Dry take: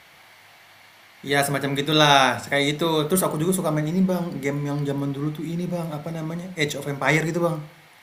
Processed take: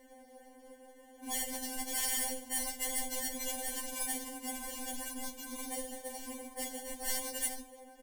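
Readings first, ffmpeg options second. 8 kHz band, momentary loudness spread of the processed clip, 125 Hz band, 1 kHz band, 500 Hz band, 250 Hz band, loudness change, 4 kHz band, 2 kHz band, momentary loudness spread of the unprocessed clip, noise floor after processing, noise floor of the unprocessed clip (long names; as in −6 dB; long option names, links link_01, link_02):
−1.5 dB, 18 LU, below −40 dB, −19.5 dB, −21.5 dB, −20.5 dB, −14.0 dB, −16.0 dB, −19.0 dB, 12 LU, −58 dBFS, −51 dBFS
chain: -filter_complex "[0:a]bandreject=frequency=400:width=12,asplit=2[link_01][link_02];[link_02]adelay=641.4,volume=-27dB,highshelf=frequency=4000:gain=-14.4[link_03];[link_01][link_03]amix=inputs=2:normalize=0,afftfilt=real='hypot(re,im)*cos(2*PI*random(0))':imag='hypot(re,im)*sin(2*PI*random(1))':win_size=512:overlap=0.75,adynamicequalizer=threshold=0.01:dfrequency=400:dqfactor=1.1:tfrequency=400:tqfactor=1.1:attack=5:release=100:ratio=0.375:range=2.5:mode=boostabove:tftype=bell,acrusher=samples=35:mix=1:aa=0.000001,afftfilt=real='re*lt(hypot(re,im),0.224)':imag='im*lt(hypot(re,im),0.224)':win_size=1024:overlap=0.75,equalizer=frequency=630:width_type=o:width=0.67:gain=7,equalizer=frequency=4000:width_type=o:width=0.67:gain=-7,equalizer=frequency=10000:width_type=o:width=0.67:gain=10,acrossover=split=160|3000[link_04][link_05][link_06];[link_05]acompressor=threshold=-44dB:ratio=3[link_07];[link_04][link_07][link_06]amix=inputs=3:normalize=0,afftfilt=real='re*3.46*eq(mod(b,12),0)':imag='im*3.46*eq(mod(b,12),0)':win_size=2048:overlap=0.75"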